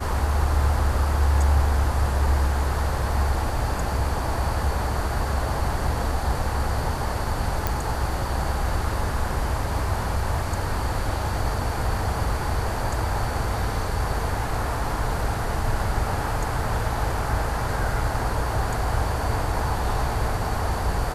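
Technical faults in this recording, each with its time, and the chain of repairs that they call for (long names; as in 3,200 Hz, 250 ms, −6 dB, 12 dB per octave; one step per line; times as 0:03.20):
0:07.67: click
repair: click removal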